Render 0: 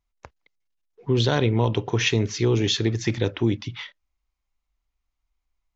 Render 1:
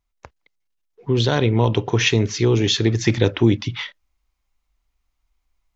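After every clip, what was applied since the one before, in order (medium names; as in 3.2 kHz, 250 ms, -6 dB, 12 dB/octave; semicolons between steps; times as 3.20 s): gain riding 0.5 s; trim +4.5 dB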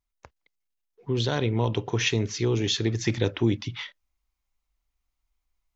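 treble shelf 6.3 kHz +4.5 dB; trim -7.5 dB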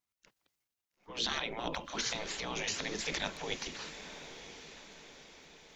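transient shaper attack -3 dB, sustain +7 dB; spectral gate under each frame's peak -15 dB weak; echo that smears into a reverb 902 ms, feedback 51%, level -11 dB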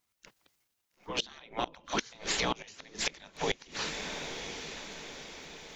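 inverted gate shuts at -25 dBFS, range -25 dB; trim +9 dB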